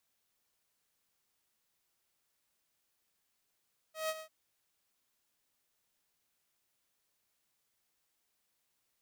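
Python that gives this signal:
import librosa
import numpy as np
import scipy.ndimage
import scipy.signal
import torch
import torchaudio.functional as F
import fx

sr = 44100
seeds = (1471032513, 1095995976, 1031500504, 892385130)

y = fx.adsr_tone(sr, wave='saw', hz=633.0, attack_ms=152.0, decay_ms=43.0, sustain_db=-12.0, held_s=0.26, release_ms=85.0, level_db=-29.0)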